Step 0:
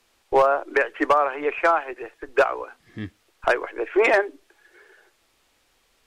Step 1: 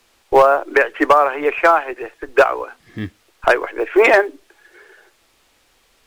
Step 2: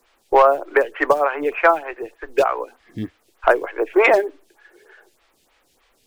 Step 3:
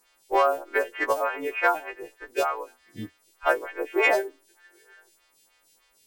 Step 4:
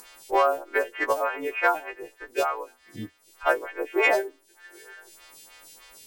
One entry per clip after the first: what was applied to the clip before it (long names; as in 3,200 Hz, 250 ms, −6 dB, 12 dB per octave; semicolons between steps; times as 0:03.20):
log-companded quantiser 8 bits; level +6.5 dB
phaser with staggered stages 3.3 Hz
every partial snapped to a pitch grid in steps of 2 semitones; level −8 dB
upward compression, threshold −37 dBFS